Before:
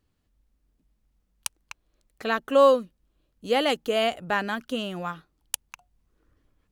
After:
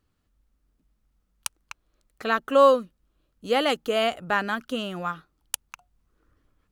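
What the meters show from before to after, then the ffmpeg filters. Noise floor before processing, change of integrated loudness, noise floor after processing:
-73 dBFS, +1.0 dB, -73 dBFS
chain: -af "equalizer=f=1.3k:t=o:w=0.45:g=5.5"

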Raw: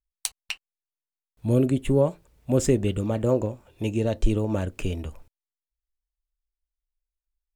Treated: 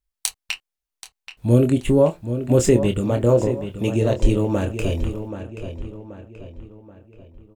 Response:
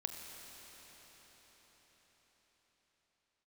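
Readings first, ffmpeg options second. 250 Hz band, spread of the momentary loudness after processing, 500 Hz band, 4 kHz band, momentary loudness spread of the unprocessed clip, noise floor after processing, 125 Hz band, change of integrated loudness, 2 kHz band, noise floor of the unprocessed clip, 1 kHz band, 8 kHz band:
+5.0 dB, 17 LU, +6.0 dB, +5.5 dB, 13 LU, -85 dBFS, +5.5 dB, +5.0 dB, +5.5 dB, under -85 dBFS, +5.5 dB, +5.5 dB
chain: -filter_complex "[0:a]asplit=2[a][b];[b]adelay=25,volume=-7.5dB[c];[a][c]amix=inputs=2:normalize=0,asplit=2[d][e];[e]adelay=780,lowpass=f=3.7k:p=1,volume=-10dB,asplit=2[f][g];[g]adelay=780,lowpass=f=3.7k:p=1,volume=0.45,asplit=2[h][i];[i]adelay=780,lowpass=f=3.7k:p=1,volume=0.45,asplit=2[j][k];[k]adelay=780,lowpass=f=3.7k:p=1,volume=0.45,asplit=2[l][m];[m]adelay=780,lowpass=f=3.7k:p=1,volume=0.45[n];[f][h][j][l][n]amix=inputs=5:normalize=0[o];[d][o]amix=inputs=2:normalize=0,volume=4.5dB"

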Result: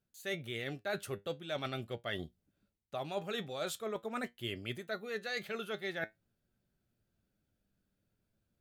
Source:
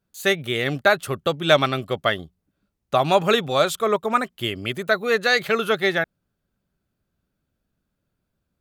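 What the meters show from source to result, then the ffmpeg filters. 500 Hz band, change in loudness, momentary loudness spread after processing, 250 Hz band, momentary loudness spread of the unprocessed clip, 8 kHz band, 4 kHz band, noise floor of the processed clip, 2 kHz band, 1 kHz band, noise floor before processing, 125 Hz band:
-18.5 dB, -18.5 dB, 4 LU, -16.0 dB, 8 LU, -14.5 dB, -17.5 dB, -84 dBFS, -18.5 dB, -21.5 dB, -78 dBFS, -15.5 dB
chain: -af "equalizer=f=1.1k:t=o:w=0.52:g=-6.5,areverse,acompressor=threshold=-32dB:ratio=6,areverse,flanger=delay=8.3:depth=1.7:regen=68:speed=0.45:shape=sinusoidal"

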